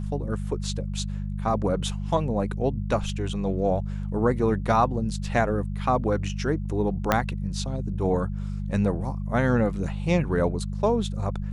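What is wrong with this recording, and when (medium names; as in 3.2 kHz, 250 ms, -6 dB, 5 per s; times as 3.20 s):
hum 50 Hz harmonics 4 -30 dBFS
7.12 s: pop -6 dBFS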